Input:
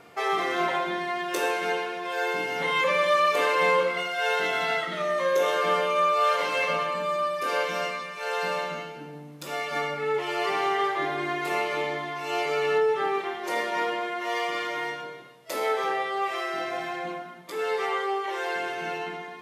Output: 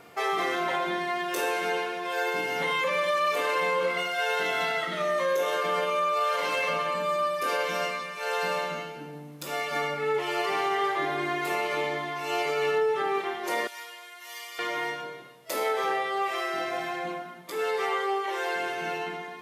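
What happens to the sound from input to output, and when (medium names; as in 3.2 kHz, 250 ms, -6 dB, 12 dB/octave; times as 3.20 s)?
13.67–14.59 s: differentiator
whole clip: treble shelf 11 kHz +8 dB; peak limiter -18.5 dBFS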